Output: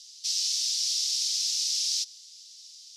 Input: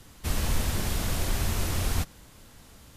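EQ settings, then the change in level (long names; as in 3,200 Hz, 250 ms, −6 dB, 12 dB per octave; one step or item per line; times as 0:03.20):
inverse Chebyshev high-pass filter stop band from 880 Hz, stop band 70 dB
low-pass with resonance 5,400 Hz, resonance Q 3.4
+6.5 dB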